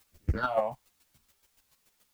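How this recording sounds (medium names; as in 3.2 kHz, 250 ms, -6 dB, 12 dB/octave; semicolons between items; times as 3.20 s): phasing stages 6, 1.2 Hz, lowest notch 340–1100 Hz; a quantiser's noise floor 12-bit, dither triangular; chopped level 7 Hz, depth 65%, duty 15%; a shimmering, thickened sound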